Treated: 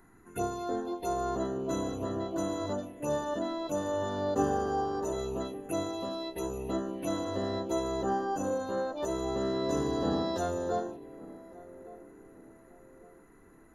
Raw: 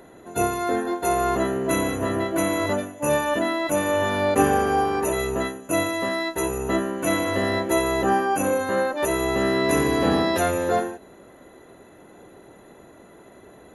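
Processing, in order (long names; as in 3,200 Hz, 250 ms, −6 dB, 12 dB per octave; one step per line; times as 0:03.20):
phaser swept by the level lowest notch 530 Hz, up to 2,300 Hz, full sweep at −20.5 dBFS
feedback echo with a band-pass in the loop 1,156 ms, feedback 45%, band-pass 360 Hz, level −16 dB
background noise brown −57 dBFS
level −8.5 dB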